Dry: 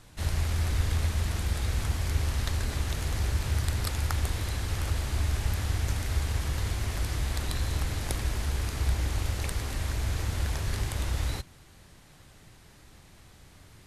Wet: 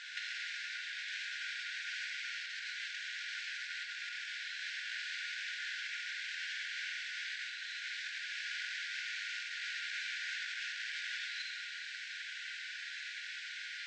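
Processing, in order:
brick-wall band-pass 1,400–8,600 Hz
compressor whose output falls as the input rises −48 dBFS, ratio −0.5
high-frequency loss of the air 200 metres
convolution reverb RT60 1.4 s, pre-delay 41 ms, DRR −0.5 dB
level +10 dB

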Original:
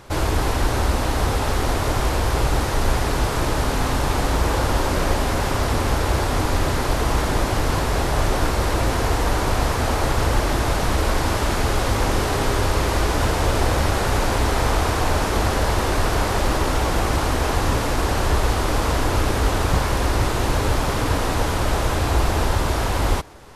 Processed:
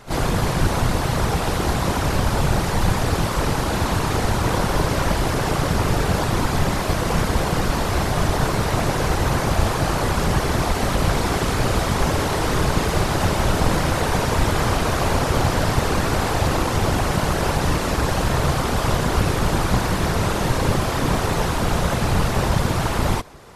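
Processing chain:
echo ahead of the sound 34 ms −12.5 dB
random phases in short frames

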